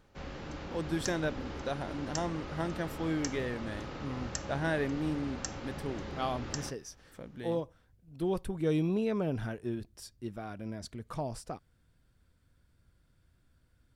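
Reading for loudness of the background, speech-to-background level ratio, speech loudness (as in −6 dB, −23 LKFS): −41.5 LKFS, 5.5 dB, −36.0 LKFS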